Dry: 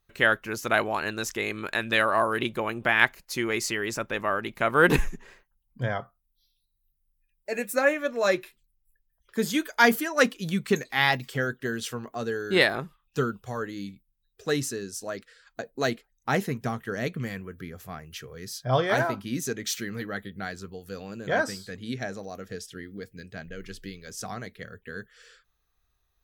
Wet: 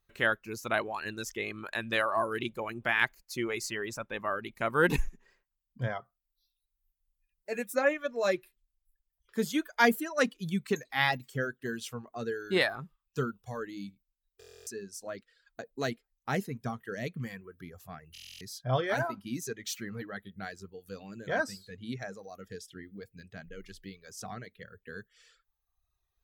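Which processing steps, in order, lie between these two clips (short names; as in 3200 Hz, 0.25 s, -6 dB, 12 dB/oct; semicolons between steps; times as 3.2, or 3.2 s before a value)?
harmonic-percussive split percussive -4 dB; reverb removal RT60 1.1 s; stuck buffer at 14.39/18.13, samples 1024, times 11; gain -3 dB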